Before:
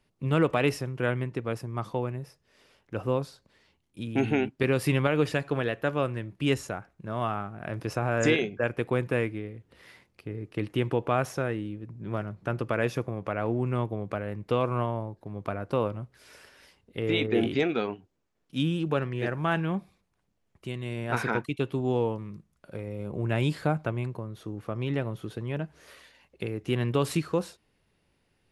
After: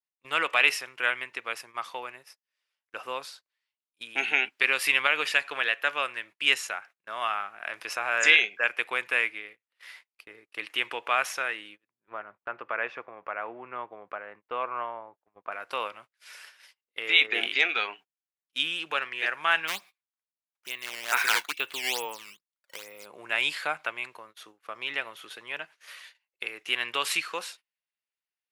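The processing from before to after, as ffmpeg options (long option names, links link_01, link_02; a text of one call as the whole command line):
ffmpeg -i in.wav -filter_complex "[0:a]asettb=1/sr,asplit=3[link_01][link_02][link_03];[link_01]atrim=end=11.914[link_04];[link_02]atrim=start=11.91:end=15.52,asetpts=PTS-STARTPTS,afade=type=in:duration=0.004:curve=qsin,afade=type=out:start_time=3.606:duration=0.004:curve=qsin,lowpass=1400[link_05];[link_03]atrim=start=15.516[link_06];[link_04][link_05]acrossfade=duration=0.004:curve1=hsin:curve2=qsin[link_07];[link_07][link_06]acrossfade=duration=0.004:curve1=qsin:curve2=hsin,asplit=3[link_08][link_09][link_10];[link_08]afade=type=out:start_time=19.67:duration=0.02[link_11];[link_09]acrusher=samples=10:mix=1:aa=0.000001:lfo=1:lforange=16:lforate=2.3,afade=type=in:start_time=19.67:duration=0.02,afade=type=out:start_time=23.04:duration=0.02[link_12];[link_10]afade=type=in:start_time=23.04:duration=0.02[link_13];[link_11][link_12][link_13]amix=inputs=3:normalize=0,highpass=1200,agate=range=-26dB:threshold=-56dB:ratio=16:detection=peak,adynamicequalizer=threshold=0.00355:dfrequency=2500:dqfactor=1.2:tfrequency=2500:tqfactor=1.2:attack=5:release=100:ratio=0.375:range=3.5:mode=boostabove:tftype=bell,volume=5.5dB" out.wav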